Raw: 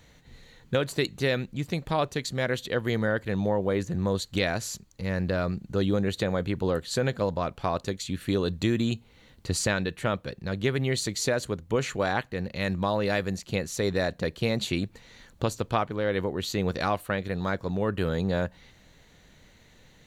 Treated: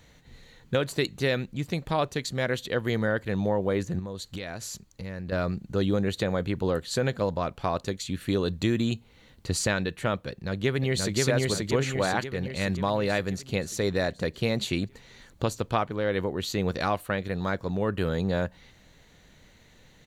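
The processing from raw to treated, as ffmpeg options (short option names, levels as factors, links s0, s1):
-filter_complex "[0:a]asettb=1/sr,asplit=3[s0][s1][s2];[s0]atrim=end=3.994[s3];[s1]atrim=start=3.99:end=5.32,asetpts=PTS-STARTPTS,afade=t=in:d=0.004:c=qsin,afade=t=out:st=1.326:d=0.004:c=qsin,acompressor=threshold=0.0224:ratio=4:attack=3.2:release=140:knee=1:detection=peak[s4];[s2]atrim=start=5.316[s5];[s3][s4]acrossfade=d=0.004:c1=hsin:c2=qsin[s6];[s6][s5]acrossfade=d=0.004:c1=qsin:c2=hsin,asplit=2[s7][s8];[s8]afade=t=in:st=10.29:d=0.01,afade=t=out:st=11.17:d=0.01,aecho=0:1:530|1060|1590|2120|2650|3180|3710|4240:0.891251|0.490188|0.269603|0.148282|0.081555|0.0448553|0.0246704|0.0135687[s9];[s7][s9]amix=inputs=2:normalize=0"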